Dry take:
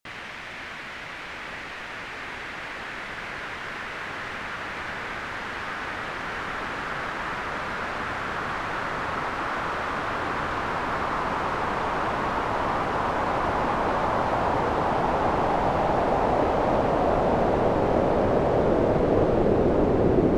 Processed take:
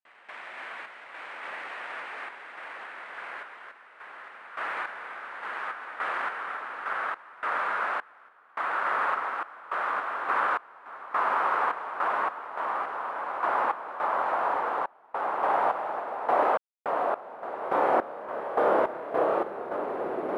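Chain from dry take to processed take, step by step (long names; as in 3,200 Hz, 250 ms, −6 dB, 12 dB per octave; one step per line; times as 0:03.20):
bad sample-rate conversion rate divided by 4×, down none, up hold
high-pass filter 680 Hz 12 dB per octave
head-to-tape spacing loss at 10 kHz 31 dB
0:17.59–0:19.76: flutter between parallel walls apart 5.1 metres, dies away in 0.39 s
dynamic equaliser 1,300 Hz, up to +5 dB, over −41 dBFS, Q 1.7
sample-and-hold tremolo, depth 100%
level +5.5 dB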